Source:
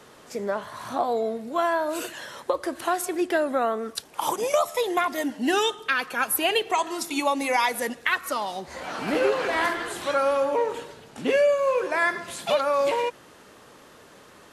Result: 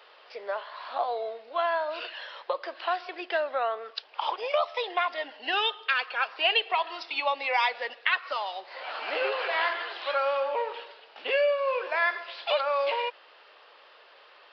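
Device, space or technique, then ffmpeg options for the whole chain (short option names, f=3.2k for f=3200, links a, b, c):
musical greeting card: -af "aresample=11025,aresample=44100,highpass=f=520:w=0.5412,highpass=f=520:w=1.3066,equalizer=f=2.8k:t=o:w=0.53:g=6,volume=-3dB"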